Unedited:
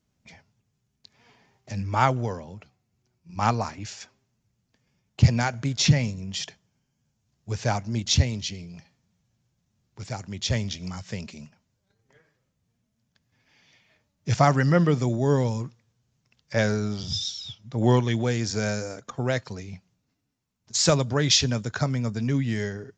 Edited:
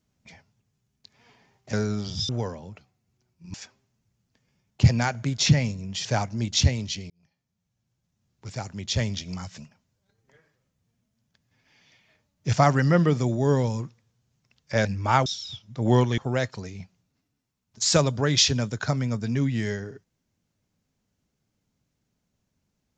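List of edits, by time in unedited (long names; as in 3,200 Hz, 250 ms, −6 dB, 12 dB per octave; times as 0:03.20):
0:01.73–0:02.14: swap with 0:16.66–0:17.22
0:03.39–0:03.93: remove
0:06.44–0:07.59: remove
0:08.64–0:10.08: fade in
0:11.12–0:11.39: remove
0:18.14–0:19.11: remove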